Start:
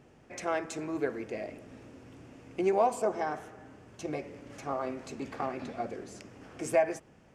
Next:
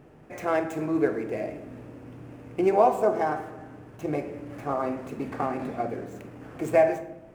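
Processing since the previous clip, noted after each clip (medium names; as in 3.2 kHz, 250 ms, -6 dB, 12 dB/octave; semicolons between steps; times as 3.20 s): median filter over 9 samples; peaking EQ 4.3 kHz -5 dB 2 oct; simulated room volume 230 m³, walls mixed, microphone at 0.44 m; trim +6 dB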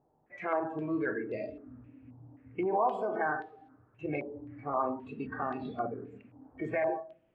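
spectral noise reduction 17 dB; peak limiter -19.5 dBFS, peak gain reduction 10.5 dB; step-sequenced low-pass 3.8 Hz 860–3800 Hz; trim -5.5 dB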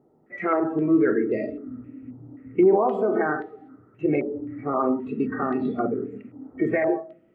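small resonant body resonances 230/360/1300/1900 Hz, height 14 dB, ringing for 20 ms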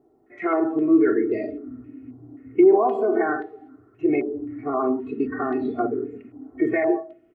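comb 2.8 ms, depth 81%; trim -2 dB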